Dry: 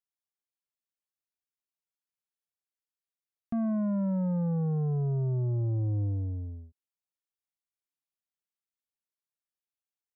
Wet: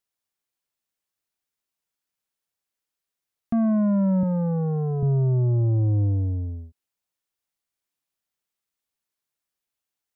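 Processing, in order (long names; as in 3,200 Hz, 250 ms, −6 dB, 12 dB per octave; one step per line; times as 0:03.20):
0:04.23–0:05.03: high-pass filter 180 Hz
level +8 dB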